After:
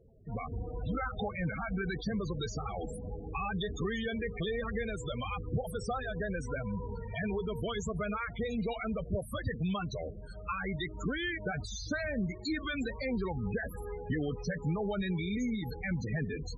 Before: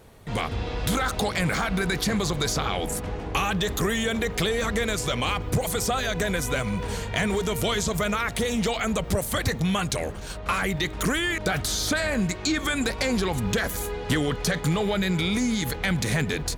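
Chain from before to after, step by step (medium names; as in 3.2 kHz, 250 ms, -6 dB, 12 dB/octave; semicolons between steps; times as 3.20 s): loudest bins only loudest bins 16; trim -8 dB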